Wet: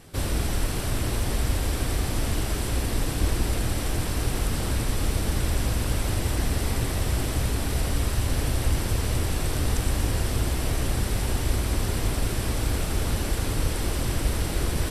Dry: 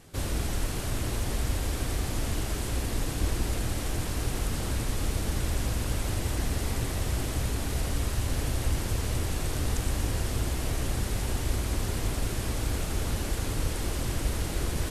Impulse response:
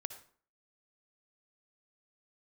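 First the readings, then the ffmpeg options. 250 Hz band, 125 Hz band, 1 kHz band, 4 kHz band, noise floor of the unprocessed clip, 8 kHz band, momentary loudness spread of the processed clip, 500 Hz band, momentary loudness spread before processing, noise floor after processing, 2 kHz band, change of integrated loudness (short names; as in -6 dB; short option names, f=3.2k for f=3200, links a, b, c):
+4.0 dB, +4.0 dB, +4.0 dB, +4.0 dB, -33 dBFS, +3.0 dB, 1 LU, +4.0 dB, 1 LU, -29 dBFS, +4.0 dB, +4.0 dB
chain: -af "bandreject=f=6.7k:w=10,volume=4dB"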